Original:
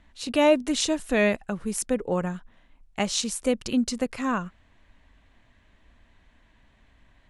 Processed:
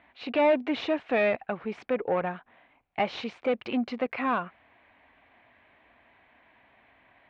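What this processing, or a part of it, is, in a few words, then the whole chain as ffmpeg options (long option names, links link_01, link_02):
overdrive pedal into a guitar cabinet: -filter_complex "[0:a]asplit=2[link_01][link_02];[link_02]highpass=frequency=720:poles=1,volume=21dB,asoftclip=type=tanh:threshold=-8dB[link_03];[link_01][link_03]amix=inputs=2:normalize=0,lowpass=frequency=1200:poles=1,volume=-6dB,highpass=76,equalizer=frequency=190:width_type=q:width=4:gain=-5,equalizer=frequency=740:width_type=q:width=4:gain=6,equalizer=frequency=2300:width_type=q:width=4:gain=7,lowpass=frequency=3700:width=0.5412,lowpass=frequency=3700:width=1.3066,volume=-7.5dB"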